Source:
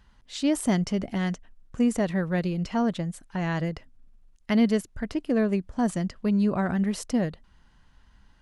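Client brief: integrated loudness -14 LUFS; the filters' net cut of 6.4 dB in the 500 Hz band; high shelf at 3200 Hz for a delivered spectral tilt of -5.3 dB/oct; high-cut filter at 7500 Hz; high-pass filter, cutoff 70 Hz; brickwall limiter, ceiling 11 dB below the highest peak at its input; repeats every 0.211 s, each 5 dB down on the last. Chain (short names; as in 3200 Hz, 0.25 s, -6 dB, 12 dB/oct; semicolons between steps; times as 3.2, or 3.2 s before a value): HPF 70 Hz; LPF 7500 Hz; bell 500 Hz -8.5 dB; high shelf 3200 Hz +3.5 dB; limiter -26 dBFS; feedback echo 0.211 s, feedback 56%, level -5 dB; gain +19 dB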